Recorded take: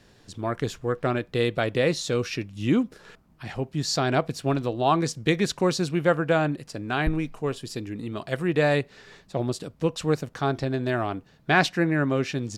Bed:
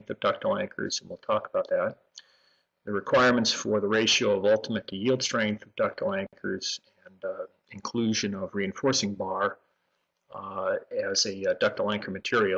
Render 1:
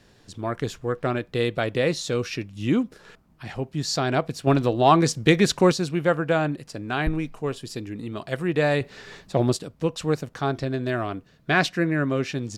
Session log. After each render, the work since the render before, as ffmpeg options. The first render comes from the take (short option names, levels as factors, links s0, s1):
-filter_complex "[0:a]asettb=1/sr,asplit=3[s0][s1][s2];[s0]atrim=end=4.474[s3];[s1]atrim=start=4.47:end=5.72,asetpts=PTS-STARTPTS,afade=t=in:d=0.004:c=qsin,afade=t=out:st=1.246:d=0.004:c=qsin,acontrast=36[s4];[s2]atrim=start=5.716[s5];[s3][s4]acrossfade=d=0.004:c1=hsin:c2=qsin[s6];[s6][s5]acrossfade=d=0.004:c1=qsin:c2=hsin,asettb=1/sr,asplit=3[s7][s8][s9];[s7]atrim=end=8.814[s10];[s8]atrim=start=8.81:end=9.57,asetpts=PTS-STARTPTS,afade=t=in:d=0.004:c=qsin,afade=t=out:st=0.756:d=0.004:c=qsin,acontrast=52[s11];[s9]atrim=start=9.566[s12];[s10][s11]acrossfade=d=0.004:c1=hsin:c2=qsin[s13];[s13][s12]acrossfade=d=0.004:c1=qsin:c2=hsin,asettb=1/sr,asplit=3[s14][s15][s16];[s14]atrim=end=10.574[s17];[s15]atrim=start=10.57:end=12.2,asetpts=PTS-STARTPTS,afade=t=in:d=0.004:c=qsin,afade=t=out:st=1.626:d=0.004:c=qsin,bandreject=f=840:w=5.4[s18];[s16]atrim=start=12.196[s19];[s17][s18]acrossfade=d=0.004:c1=hsin:c2=qsin[s20];[s20][s19]acrossfade=d=0.004:c1=qsin:c2=hsin"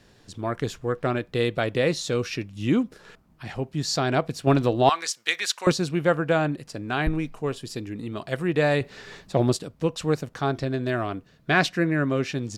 -filter_complex "[0:a]asettb=1/sr,asplit=3[s0][s1][s2];[s0]atrim=end=4.894[s3];[s1]atrim=start=4.89:end=5.67,asetpts=PTS-STARTPTS,afade=t=in:d=0.004:c=qsin,afade=t=out:st=0.776:d=0.004:c=qsin,highpass=1400[s4];[s2]atrim=start=5.666[s5];[s3][s4]acrossfade=d=0.004:c1=hsin:c2=qsin[s6];[s6][s5]acrossfade=d=0.004:c1=qsin:c2=hsin"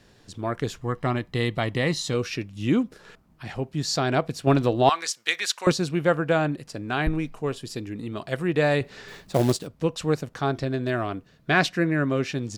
-filter_complex "[0:a]asettb=1/sr,asplit=3[s0][s1][s2];[s0]atrim=end=0.814[s3];[s1]atrim=start=0.81:end=2.14,asetpts=PTS-STARTPTS,afade=t=in:d=0.004:c=qsin,afade=t=out:st=1.326:d=0.004:c=qsin,aecho=1:1:1:0.49,atrim=end_sample=58653[s4];[s2]atrim=start=2.136[s5];[s3][s4]acrossfade=d=0.004:c1=hsin:c2=qsin[s6];[s6][s5]acrossfade=d=0.004:c1=qsin:c2=hsin,asettb=1/sr,asplit=3[s7][s8][s9];[s7]atrim=end=9.084[s10];[s8]atrim=start=9.08:end=9.67,asetpts=PTS-STARTPTS,afade=t=in:d=0.004:c=qsin,afade=t=out:st=0.586:d=0.004:c=qsin,acrusher=bits=4:mode=log:mix=0:aa=0.000001[s11];[s9]atrim=start=9.666[s12];[s10][s11]acrossfade=d=0.004:c1=hsin:c2=qsin[s13];[s13][s12]acrossfade=d=0.004:c1=qsin:c2=hsin"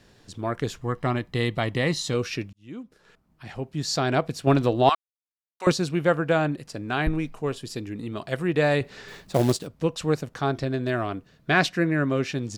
-filter_complex "[0:a]asplit=4[s0][s1][s2][s3];[s0]atrim=end=2.53,asetpts=PTS-STARTPTS,afade=t=out:st=2.526:d=0.004:c=hsin[s4];[s1]atrim=start=2.53:end=4.95,asetpts=PTS-STARTPTS,afade=t=in:d=1.5,afade=t=out:st=2.416:d=0.004:c=hsin[s5];[s2]atrim=start=4.95:end=5.6,asetpts=PTS-STARTPTS,volume=0[s6];[s3]atrim=start=5.6,asetpts=PTS-STARTPTS,afade=t=in:d=0.004:c=hsin[s7];[s4][s5][s6][s7]concat=n=4:v=0:a=1"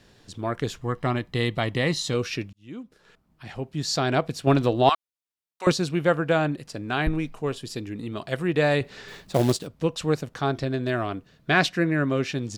-af "equalizer=f=3400:t=o:w=0.77:g=2"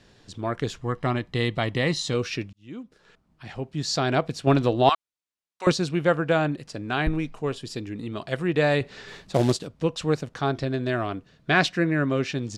-af "lowpass=8800"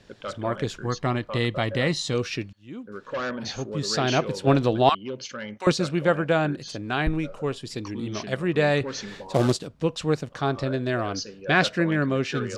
-filter_complex "[1:a]volume=0.355[s0];[0:a][s0]amix=inputs=2:normalize=0"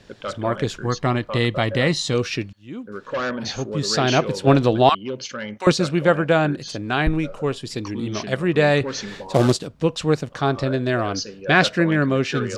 -af "volume=1.68,alimiter=limit=0.794:level=0:latency=1"